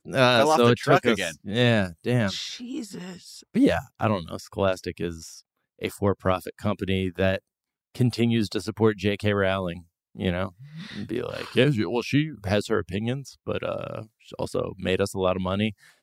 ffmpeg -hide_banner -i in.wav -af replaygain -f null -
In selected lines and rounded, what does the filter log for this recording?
track_gain = +3.9 dB
track_peak = 0.467